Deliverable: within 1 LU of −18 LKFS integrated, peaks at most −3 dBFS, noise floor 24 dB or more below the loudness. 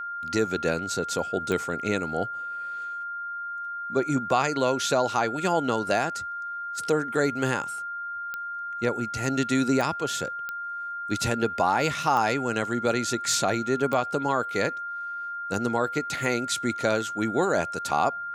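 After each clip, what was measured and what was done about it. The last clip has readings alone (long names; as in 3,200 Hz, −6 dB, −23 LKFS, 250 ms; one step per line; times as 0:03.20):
number of clicks 6; interfering tone 1,400 Hz; level of the tone −31 dBFS; integrated loudness −27.0 LKFS; sample peak −9.0 dBFS; target loudness −18.0 LKFS
→ click removal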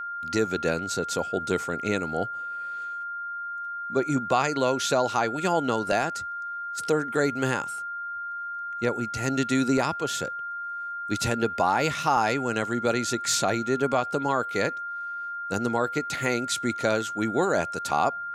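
number of clicks 0; interfering tone 1,400 Hz; level of the tone −31 dBFS
→ notch filter 1,400 Hz, Q 30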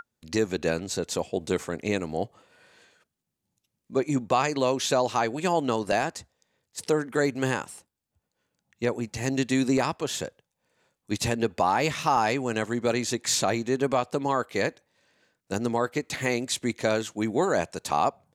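interfering tone none found; integrated loudness −27.0 LKFS; sample peak −9.0 dBFS; target loudness −18.0 LKFS
→ level +9 dB
brickwall limiter −3 dBFS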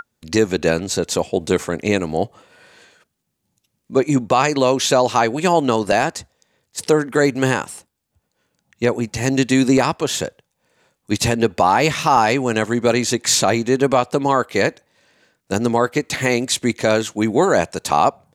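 integrated loudness −18.0 LKFS; sample peak −3.0 dBFS; background noise floor −74 dBFS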